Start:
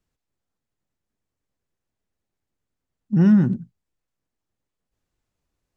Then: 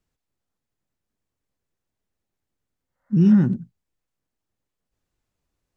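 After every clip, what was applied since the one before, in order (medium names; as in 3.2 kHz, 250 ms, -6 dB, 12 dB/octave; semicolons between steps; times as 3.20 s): spectral replace 2.88–3.33 s, 490–2200 Hz both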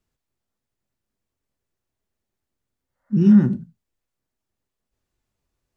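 gated-style reverb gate 110 ms falling, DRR 10 dB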